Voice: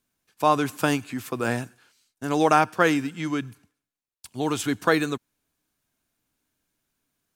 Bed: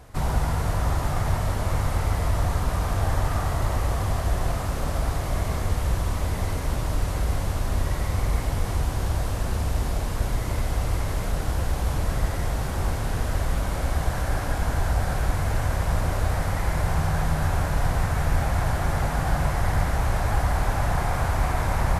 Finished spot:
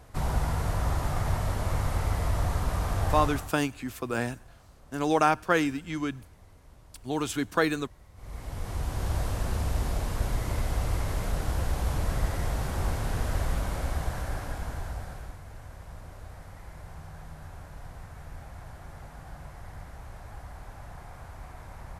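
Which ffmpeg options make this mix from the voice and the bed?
-filter_complex "[0:a]adelay=2700,volume=0.631[s0];[1:a]volume=10.6,afade=t=out:st=3.18:d=0.36:silence=0.0630957,afade=t=in:st=8.15:d=1.02:silence=0.0595662,afade=t=out:st=13.42:d=1.98:silence=0.141254[s1];[s0][s1]amix=inputs=2:normalize=0"

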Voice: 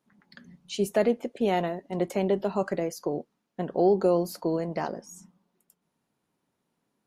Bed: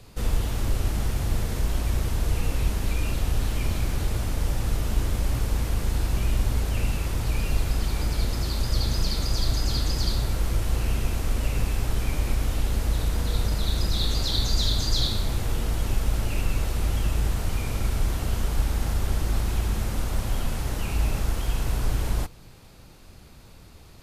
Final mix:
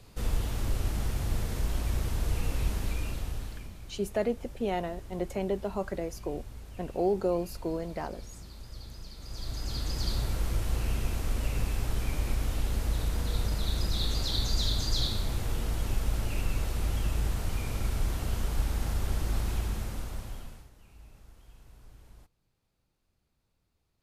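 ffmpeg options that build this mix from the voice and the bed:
-filter_complex "[0:a]adelay=3200,volume=0.531[s0];[1:a]volume=3.16,afade=t=out:st=2.77:d=0.95:silence=0.177828,afade=t=in:st=9.18:d=1.01:silence=0.177828,afade=t=out:st=19.5:d=1.2:silence=0.0668344[s1];[s0][s1]amix=inputs=2:normalize=0"

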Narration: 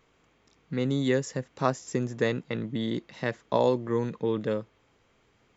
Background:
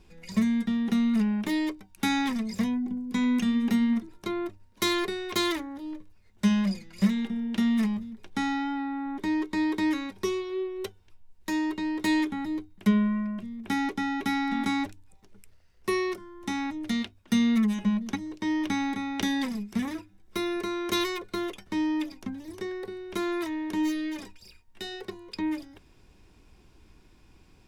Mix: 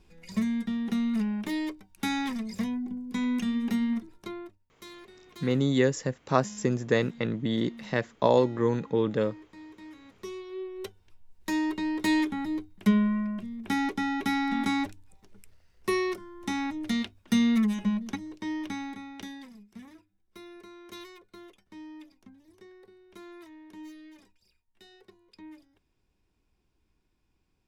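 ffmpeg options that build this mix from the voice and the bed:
-filter_complex "[0:a]adelay=4700,volume=1.26[s0];[1:a]volume=7.5,afade=t=out:st=4.08:d=0.57:silence=0.133352,afade=t=in:st=9.98:d=1.36:silence=0.0891251,afade=t=out:st=17.46:d=1.98:silence=0.133352[s1];[s0][s1]amix=inputs=2:normalize=0"

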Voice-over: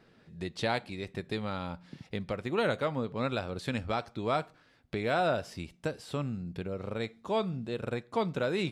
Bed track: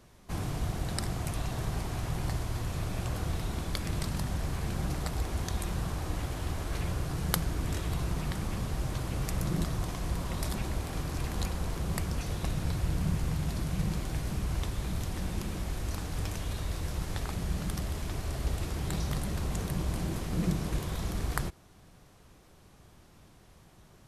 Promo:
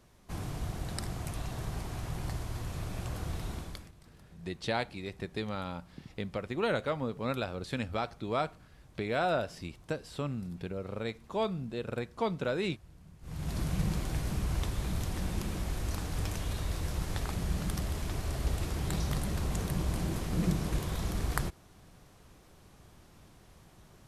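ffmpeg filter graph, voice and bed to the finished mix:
-filter_complex "[0:a]adelay=4050,volume=0.841[s0];[1:a]volume=11.2,afade=t=out:st=3.51:d=0.41:silence=0.0891251,afade=t=in:st=13.21:d=0.4:silence=0.0562341[s1];[s0][s1]amix=inputs=2:normalize=0"

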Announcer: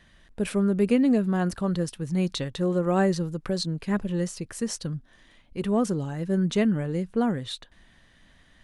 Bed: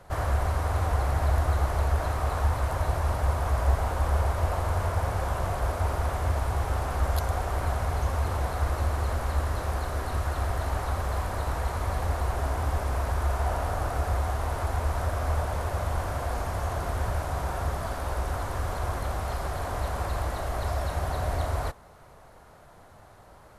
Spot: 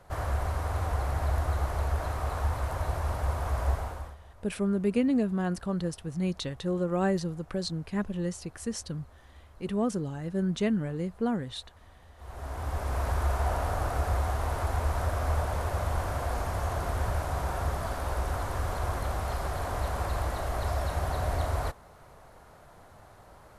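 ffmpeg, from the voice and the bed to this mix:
-filter_complex "[0:a]adelay=4050,volume=0.596[s0];[1:a]volume=11.9,afade=t=out:st=3.69:d=0.47:silence=0.0749894,afade=t=in:st=12.16:d=0.92:silence=0.0530884[s1];[s0][s1]amix=inputs=2:normalize=0"

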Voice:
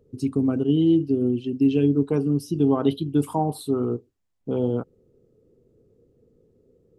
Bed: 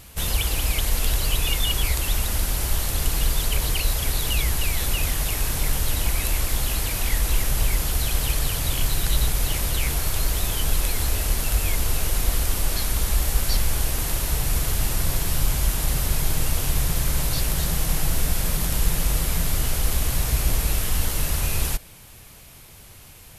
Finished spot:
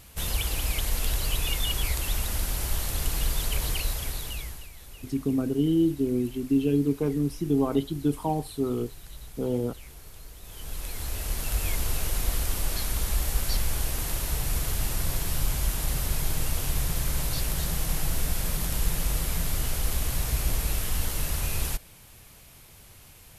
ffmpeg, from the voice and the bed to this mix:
-filter_complex "[0:a]adelay=4900,volume=0.631[s0];[1:a]volume=4.22,afade=t=out:st=3.72:d=0.97:silence=0.133352,afade=t=in:st=10.41:d=1.27:silence=0.133352[s1];[s0][s1]amix=inputs=2:normalize=0"

